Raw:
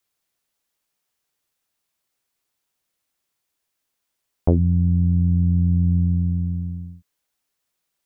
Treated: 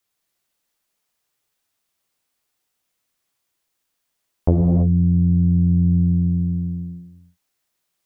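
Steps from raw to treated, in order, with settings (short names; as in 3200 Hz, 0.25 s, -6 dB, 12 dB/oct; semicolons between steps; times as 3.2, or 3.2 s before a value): non-linear reverb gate 0.36 s flat, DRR 1 dB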